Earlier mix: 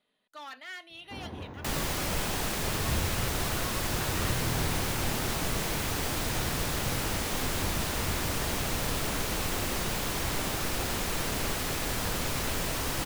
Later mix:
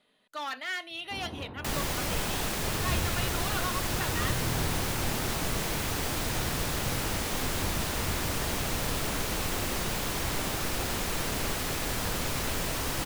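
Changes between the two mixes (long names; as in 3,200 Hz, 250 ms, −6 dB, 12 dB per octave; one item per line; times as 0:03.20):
speech +8.0 dB
first sound: add Savitzky-Golay smoothing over 41 samples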